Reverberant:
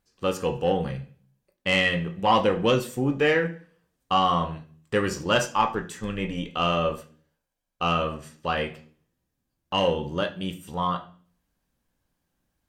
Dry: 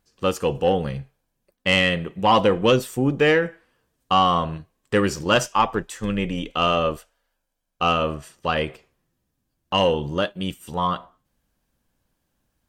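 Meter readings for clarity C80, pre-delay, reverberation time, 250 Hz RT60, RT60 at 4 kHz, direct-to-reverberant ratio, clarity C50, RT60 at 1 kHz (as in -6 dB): 19.0 dB, 18 ms, 0.45 s, 0.65 s, 0.50 s, 4.5 dB, 14.0 dB, 0.35 s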